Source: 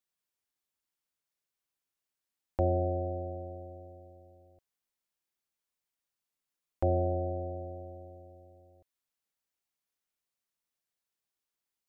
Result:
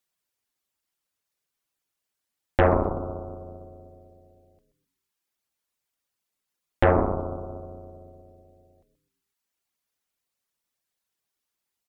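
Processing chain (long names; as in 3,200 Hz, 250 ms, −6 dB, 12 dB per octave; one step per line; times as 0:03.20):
reverb reduction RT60 0.79 s
echo with shifted repeats 128 ms, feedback 36%, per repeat −120 Hz, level −10 dB
harmonic generator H 6 −7 dB, 8 −25 dB, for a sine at −15.5 dBFS
level +7 dB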